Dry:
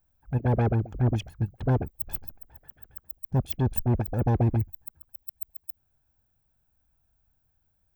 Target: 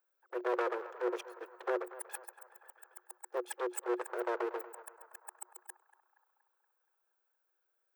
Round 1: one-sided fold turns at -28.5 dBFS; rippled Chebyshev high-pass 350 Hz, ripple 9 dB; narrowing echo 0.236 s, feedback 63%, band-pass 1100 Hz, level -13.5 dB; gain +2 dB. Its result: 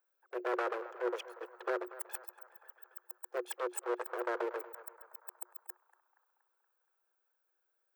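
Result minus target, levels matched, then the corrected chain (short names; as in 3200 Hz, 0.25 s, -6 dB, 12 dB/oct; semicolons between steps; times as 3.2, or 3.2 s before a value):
one-sided fold: distortion -16 dB
one-sided fold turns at -39.5 dBFS; rippled Chebyshev high-pass 350 Hz, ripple 9 dB; narrowing echo 0.236 s, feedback 63%, band-pass 1100 Hz, level -13.5 dB; gain +2 dB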